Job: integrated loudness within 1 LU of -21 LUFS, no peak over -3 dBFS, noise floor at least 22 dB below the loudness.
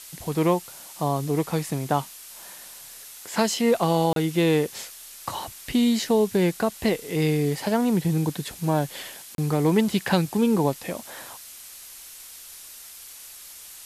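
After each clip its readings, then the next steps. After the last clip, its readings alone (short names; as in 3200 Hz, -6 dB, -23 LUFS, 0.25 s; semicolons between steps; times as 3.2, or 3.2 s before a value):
dropouts 2; longest dropout 32 ms; noise floor -44 dBFS; noise floor target -46 dBFS; loudness -24.0 LUFS; peak -6.5 dBFS; loudness target -21.0 LUFS
-> interpolate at 4.13/9.35, 32 ms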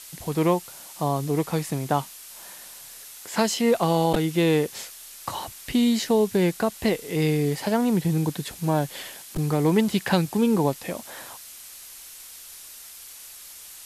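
dropouts 0; noise floor -44 dBFS; noise floor target -46 dBFS
-> denoiser 6 dB, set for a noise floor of -44 dBFS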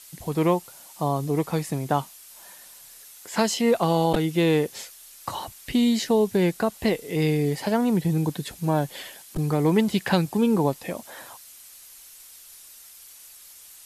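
noise floor -48 dBFS; loudness -24.5 LUFS; peak -7.0 dBFS; loudness target -21.0 LUFS
-> gain +3.5 dB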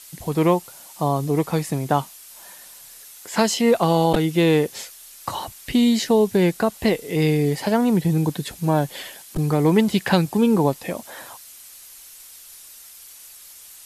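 loudness -21.0 LUFS; peak -3.5 dBFS; noise floor -44 dBFS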